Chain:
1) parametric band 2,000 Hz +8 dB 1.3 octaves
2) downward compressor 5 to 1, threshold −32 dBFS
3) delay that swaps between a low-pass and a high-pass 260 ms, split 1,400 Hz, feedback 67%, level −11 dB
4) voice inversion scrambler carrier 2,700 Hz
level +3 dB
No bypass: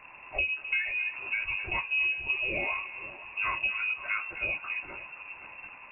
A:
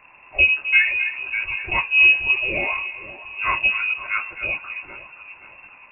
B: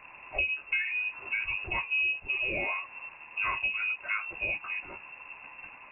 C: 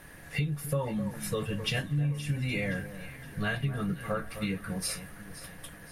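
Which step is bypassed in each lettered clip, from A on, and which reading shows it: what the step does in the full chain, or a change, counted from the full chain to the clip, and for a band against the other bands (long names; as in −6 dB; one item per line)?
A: 2, change in crest factor +2.0 dB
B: 3, change in momentary loudness spread +2 LU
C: 4, 2 kHz band −22.0 dB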